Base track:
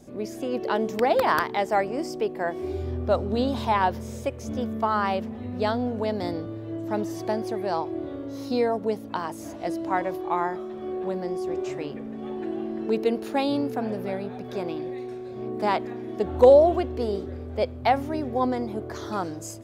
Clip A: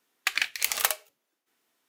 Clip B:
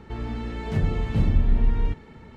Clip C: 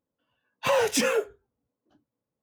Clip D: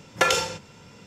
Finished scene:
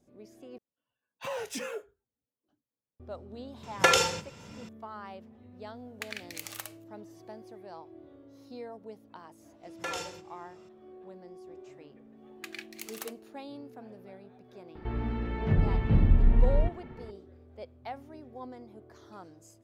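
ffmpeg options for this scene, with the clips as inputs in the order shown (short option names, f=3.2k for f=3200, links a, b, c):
-filter_complex "[4:a]asplit=2[a][b];[1:a]asplit=2[c][d];[0:a]volume=-19dB[e];[c]acompressor=threshold=-39dB:ratio=2.5:attack=56:release=99:knee=1:detection=peak[f];[b]alimiter=limit=-10.5dB:level=0:latency=1:release=16[g];[d]aphaser=in_gain=1:out_gain=1:delay=3.6:decay=0.3:speed=1.1:type=sinusoidal[h];[2:a]lowpass=2.6k[i];[e]asplit=2[j][k];[j]atrim=end=0.584[l];[3:a]atrim=end=2.42,asetpts=PTS-STARTPTS,volume=-13dB[m];[k]atrim=start=2.996[n];[a]atrim=end=1.06,asetpts=PTS-STARTPTS,volume=-1dB,afade=t=in:d=0.004:c=hsin,afade=t=out:st=1.056:d=0.004:c=hsin,adelay=3630[o];[f]atrim=end=1.88,asetpts=PTS-STARTPTS,volume=-10dB,afade=t=in:d=0.004:c=hsin,afade=t=out:st=1.876:d=0.004:c=hsin,adelay=5750[p];[g]atrim=end=1.06,asetpts=PTS-STARTPTS,volume=-14dB,afade=t=in:d=0.004:c=hsin,afade=t=out:st=1.056:d=0.004:c=hsin,adelay=9630[q];[h]atrim=end=1.88,asetpts=PTS-STARTPTS,volume=-17.5dB,afade=t=in:d=0.004:c=hsin,afade=t=out:st=1.876:d=0.004:c=hsin,adelay=12170[r];[i]atrim=end=2.36,asetpts=PTS-STARTPTS,volume=-1.5dB,afade=t=in:d=0.004:c=hsin,afade=t=out:st=2.356:d=0.004:c=hsin,adelay=14750[s];[l][m]acrossfade=d=0.004:c1=hsin:c2=hsin[t];[t][n]acrossfade=d=0.004:c1=hsin:c2=hsin[u];[u][o][p][q][r][s]amix=inputs=6:normalize=0"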